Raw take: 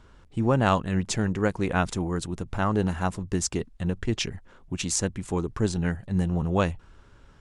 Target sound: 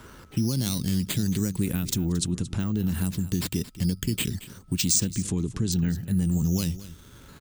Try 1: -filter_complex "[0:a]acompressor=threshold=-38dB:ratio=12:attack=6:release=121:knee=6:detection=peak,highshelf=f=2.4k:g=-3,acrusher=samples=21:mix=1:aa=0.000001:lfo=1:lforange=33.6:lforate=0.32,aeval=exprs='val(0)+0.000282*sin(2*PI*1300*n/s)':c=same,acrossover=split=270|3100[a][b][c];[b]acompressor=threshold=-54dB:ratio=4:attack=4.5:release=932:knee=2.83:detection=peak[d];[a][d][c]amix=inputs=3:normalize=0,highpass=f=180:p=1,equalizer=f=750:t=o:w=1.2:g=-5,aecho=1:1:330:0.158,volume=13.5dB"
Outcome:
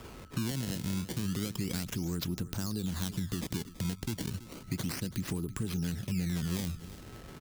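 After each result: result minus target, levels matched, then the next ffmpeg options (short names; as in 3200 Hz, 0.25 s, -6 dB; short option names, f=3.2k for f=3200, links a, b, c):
echo 0.105 s late; compressor: peak gain reduction +9 dB; decimation with a swept rate: distortion +7 dB
-filter_complex "[0:a]acompressor=threshold=-28dB:ratio=12:attack=6:release=121:knee=6:detection=peak,highshelf=f=2.4k:g=-3,acrusher=samples=21:mix=1:aa=0.000001:lfo=1:lforange=33.6:lforate=0.32,aeval=exprs='val(0)+0.000282*sin(2*PI*1300*n/s)':c=same,acrossover=split=270|3100[a][b][c];[b]acompressor=threshold=-54dB:ratio=4:attack=4.5:release=932:knee=2.83:detection=peak[d];[a][d][c]amix=inputs=3:normalize=0,highpass=f=180:p=1,equalizer=f=750:t=o:w=1.2:g=-5,aecho=1:1:225:0.158,volume=13.5dB"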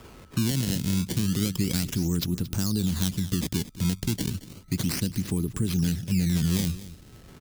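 decimation with a swept rate: distortion +7 dB
-filter_complex "[0:a]acompressor=threshold=-28dB:ratio=12:attack=6:release=121:knee=6:detection=peak,highshelf=f=2.4k:g=-3,acrusher=samples=5:mix=1:aa=0.000001:lfo=1:lforange=8:lforate=0.32,aeval=exprs='val(0)+0.000282*sin(2*PI*1300*n/s)':c=same,acrossover=split=270|3100[a][b][c];[b]acompressor=threshold=-54dB:ratio=4:attack=4.5:release=932:knee=2.83:detection=peak[d];[a][d][c]amix=inputs=3:normalize=0,highpass=f=180:p=1,equalizer=f=750:t=o:w=1.2:g=-5,aecho=1:1:225:0.158,volume=13.5dB"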